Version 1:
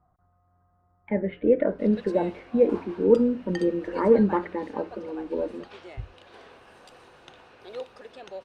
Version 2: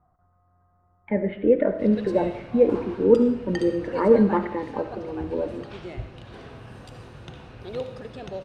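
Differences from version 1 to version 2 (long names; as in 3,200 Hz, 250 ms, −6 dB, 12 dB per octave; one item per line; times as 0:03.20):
background: remove high-pass filter 440 Hz 12 dB per octave
reverb: on, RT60 0.75 s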